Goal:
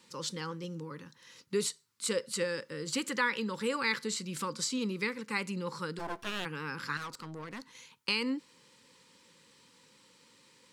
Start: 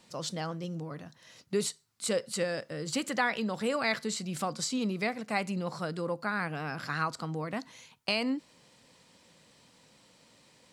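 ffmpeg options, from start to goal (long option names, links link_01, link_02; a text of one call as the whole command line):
ffmpeg -i in.wav -filter_complex "[0:a]asuperstop=centerf=680:order=8:qfactor=2.4,asplit=3[link_01][link_02][link_03];[link_01]afade=type=out:start_time=5.98:duration=0.02[link_04];[link_02]aeval=exprs='abs(val(0))':channel_layout=same,afade=type=in:start_time=5.98:duration=0.02,afade=type=out:start_time=6.44:duration=0.02[link_05];[link_03]afade=type=in:start_time=6.44:duration=0.02[link_06];[link_04][link_05][link_06]amix=inputs=3:normalize=0,asettb=1/sr,asplit=3[link_07][link_08][link_09];[link_07]atrim=end=6.974[link_10];[link_08]atrim=start=6.97:end=7.75,asetpts=PTS-STARTPTS,afade=type=in:duration=0.004:curve=qsin,afade=type=out:start_time=0.776:duration=0.004:curve=qsin,aeval=exprs='(tanh(70.8*val(0)+0.65)-tanh(0.65))/70.8':channel_layout=same[link_11];[link_09]atrim=start=7.746[link_12];[link_10][link_11]acrossfade=duration=0.004:curve1=hsin:curve2=qsin[link_13];[link_13][link_12]acrossfade=duration=0.004:curve1=qsin:curve2=hsin,lowshelf=frequency=130:gain=-11" out.wav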